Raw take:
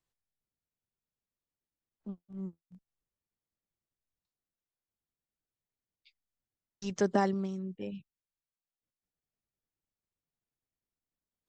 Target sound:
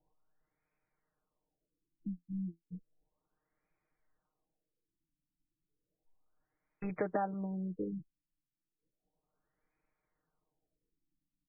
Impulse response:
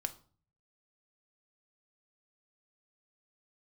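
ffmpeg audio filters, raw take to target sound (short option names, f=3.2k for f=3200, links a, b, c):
-af "aecho=1:1:6.5:0.71,acompressor=threshold=-44dB:ratio=6,equalizer=f=100:t=o:w=2.7:g=-9,afftfilt=real='re*lt(b*sr/1024,310*pow(2600/310,0.5+0.5*sin(2*PI*0.33*pts/sr)))':imag='im*lt(b*sr/1024,310*pow(2600/310,0.5+0.5*sin(2*PI*0.33*pts/sr)))':win_size=1024:overlap=0.75,volume=13.5dB"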